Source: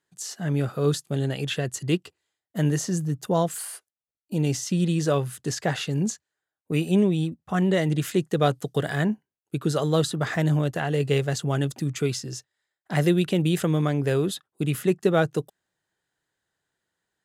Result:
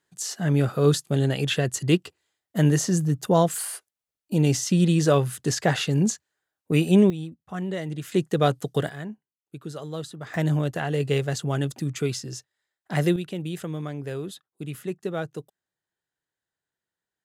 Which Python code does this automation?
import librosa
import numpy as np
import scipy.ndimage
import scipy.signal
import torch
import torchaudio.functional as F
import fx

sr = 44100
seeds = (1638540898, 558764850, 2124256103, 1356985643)

y = fx.gain(x, sr, db=fx.steps((0.0, 3.5), (7.1, -8.0), (8.12, 0.5), (8.89, -11.5), (10.34, -1.0), (13.16, -9.0)))